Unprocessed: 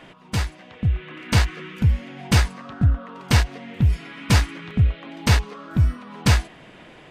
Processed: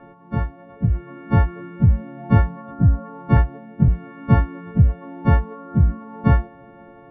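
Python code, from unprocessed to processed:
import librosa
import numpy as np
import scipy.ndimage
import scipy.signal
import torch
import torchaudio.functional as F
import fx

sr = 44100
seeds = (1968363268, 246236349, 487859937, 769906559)

y = fx.freq_snap(x, sr, grid_st=4)
y = fx.dynamic_eq(y, sr, hz=170.0, q=1.7, threshold_db=-34.0, ratio=4.0, max_db=6)
y = scipy.signal.sosfilt(scipy.signal.bessel(4, 850.0, 'lowpass', norm='mag', fs=sr, output='sos'), y)
y = fx.band_widen(y, sr, depth_pct=40, at=(3.37, 3.88))
y = F.gain(torch.from_numpy(y), 3.0).numpy()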